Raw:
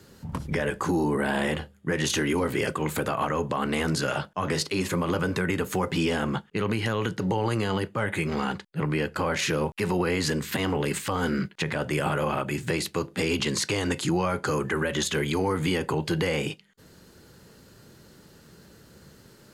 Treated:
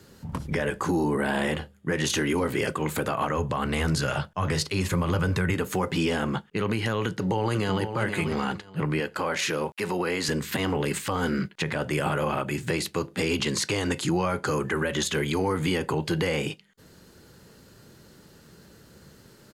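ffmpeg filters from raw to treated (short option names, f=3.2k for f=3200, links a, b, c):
-filter_complex "[0:a]asplit=3[a][b][c];[a]afade=t=out:st=3.37:d=0.02[d];[b]asubboost=boost=4.5:cutoff=120,afade=t=in:st=3.37:d=0.02,afade=t=out:st=5.53:d=0.02[e];[c]afade=t=in:st=5.53:d=0.02[f];[d][e][f]amix=inputs=3:normalize=0,asplit=2[g][h];[h]afade=t=in:st=7.05:d=0.01,afade=t=out:st=7.84:d=0.01,aecho=0:1:490|980|1470:0.398107|0.0796214|0.0159243[i];[g][i]amix=inputs=2:normalize=0,asettb=1/sr,asplit=3[j][k][l];[j]atrim=end=9.004[m];[k]atrim=start=9:end=10.29,asetpts=PTS-STARTPTS,afade=t=in:d=0.004:c=qsin,afade=t=out:st=1.286:d=0.004:c=qsin,highpass=f=290:p=1[n];[l]atrim=start=10.286[o];[m][n]acrossfade=d=0.004:c1=hsin:c2=qsin[p];[p][o]acrossfade=d=0.004:c1=qsin:c2=hsin"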